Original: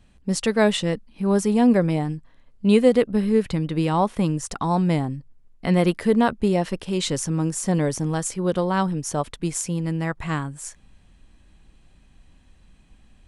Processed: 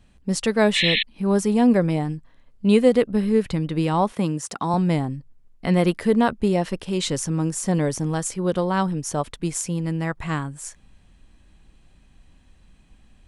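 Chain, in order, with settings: 0.75–1.03 painted sound noise 1700–4200 Hz -21 dBFS; 4.12–4.74 HPF 150 Hz 12 dB/oct

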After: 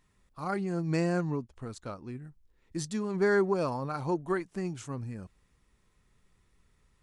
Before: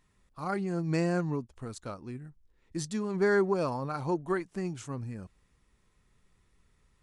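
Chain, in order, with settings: 1.32–2.23 high shelf 8200 Hz -7.5 dB

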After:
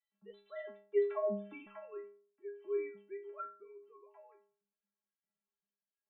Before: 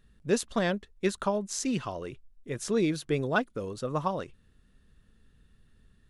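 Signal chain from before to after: sine-wave speech; Doppler pass-by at 1.45, 36 m/s, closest 16 m; metallic resonator 200 Hz, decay 0.53 s, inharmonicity 0.008; gain +7 dB

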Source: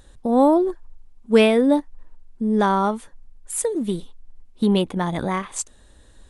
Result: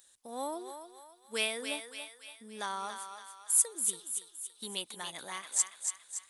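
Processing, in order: differentiator; thinning echo 0.283 s, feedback 52%, high-pass 710 Hz, level -6 dB

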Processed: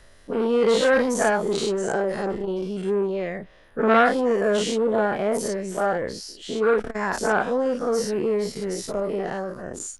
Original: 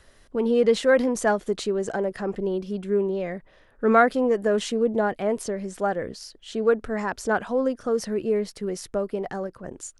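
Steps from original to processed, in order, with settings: spectral dilation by 0.12 s; core saturation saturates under 810 Hz; gain -2 dB

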